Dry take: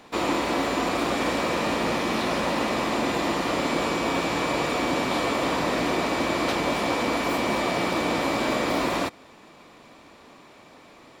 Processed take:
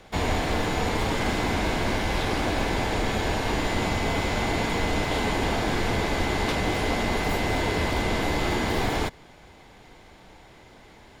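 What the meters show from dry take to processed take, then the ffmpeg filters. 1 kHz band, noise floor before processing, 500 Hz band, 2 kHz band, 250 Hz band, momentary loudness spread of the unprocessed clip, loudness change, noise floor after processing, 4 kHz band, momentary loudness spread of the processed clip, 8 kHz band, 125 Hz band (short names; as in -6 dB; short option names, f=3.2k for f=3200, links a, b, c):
-2.0 dB, -51 dBFS, -2.0 dB, 0.0 dB, -2.0 dB, 1 LU, -1.0 dB, -51 dBFS, -0.5 dB, 1 LU, -0.5 dB, +7.5 dB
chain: -af "afreqshift=-260"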